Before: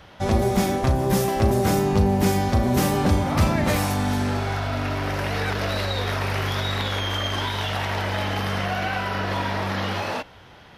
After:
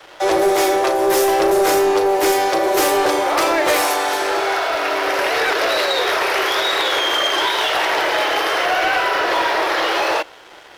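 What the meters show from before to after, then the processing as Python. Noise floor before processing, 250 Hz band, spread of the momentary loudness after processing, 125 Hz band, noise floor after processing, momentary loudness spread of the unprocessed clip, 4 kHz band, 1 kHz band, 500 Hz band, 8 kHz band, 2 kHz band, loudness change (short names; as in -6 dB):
-47 dBFS, -1.5 dB, 3 LU, under -20 dB, -42 dBFS, 6 LU, +9.5 dB, +9.0 dB, +9.0 dB, +8.5 dB, +10.0 dB, +6.5 dB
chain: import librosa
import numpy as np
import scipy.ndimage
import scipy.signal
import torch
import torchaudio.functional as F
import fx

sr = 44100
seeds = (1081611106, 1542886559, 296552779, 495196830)

y = scipy.signal.sosfilt(scipy.signal.cheby1(8, 1.0, 310.0, 'highpass', fs=sr, output='sos'), x)
y = fx.leveller(y, sr, passes=2)
y = y * 10.0 ** (3.5 / 20.0)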